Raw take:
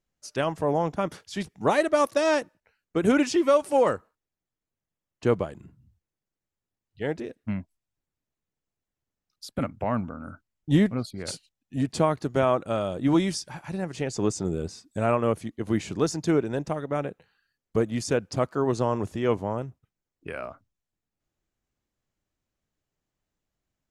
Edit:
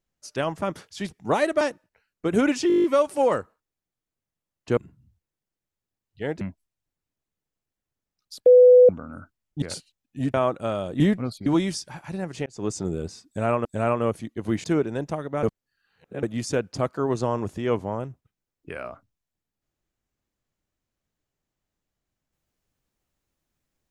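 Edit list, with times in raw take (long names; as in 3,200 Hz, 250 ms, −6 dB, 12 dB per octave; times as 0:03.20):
0:00.62–0:00.98: remove
0:01.97–0:02.32: remove
0:03.39: stutter 0.02 s, 9 plays
0:05.32–0:05.57: remove
0:07.21–0:07.52: remove
0:09.57–0:10.00: beep over 498 Hz −8.5 dBFS
0:10.73–0:11.19: move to 0:13.06
0:11.91–0:12.40: remove
0:14.06–0:14.35: fade in
0:14.87–0:15.25: repeat, 2 plays
0:15.86–0:16.22: remove
0:17.01–0:17.81: reverse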